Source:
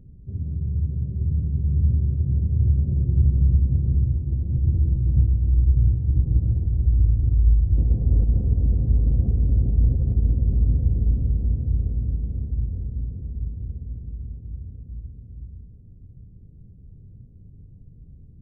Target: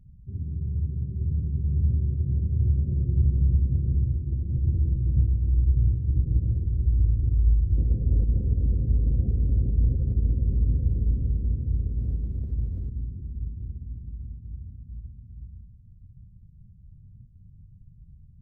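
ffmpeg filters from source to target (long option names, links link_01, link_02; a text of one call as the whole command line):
ffmpeg -i in.wav -filter_complex "[0:a]asettb=1/sr,asplit=3[link_01][link_02][link_03];[link_01]atrim=end=11.984[link_04];[link_02]atrim=start=11.98:end=12.89,asetpts=PTS-STARTPTS,afade=type=in:duration=0.004:curve=qsin,afade=type=out:start_time=0.906:duration=0.004:curve=qsin,aeval=exprs='val(0)+0.5*0.015*sgn(val(0))':channel_layout=same[link_05];[link_03]atrim=start=12.886[link_06];[link_04][link_05]acrossfade=duration=0.004:curve1=hsin:curve2=qsin[link_07];[link_07][link_06]acrossfade=duration=0.004:curve1=qsin:curve2=hsin,afftdn=noise_reduction=20:noise_floor=-39,adynamicequalizer=threshold=0.002:dfrequency=360:dqfactor=7.9:tfrequency=360:tqfactor=7.9:attack=5:release=100:ratio=0.375:range=1.5:mode=boostabove:tftype=bell,volume=-3.5dB" out.wav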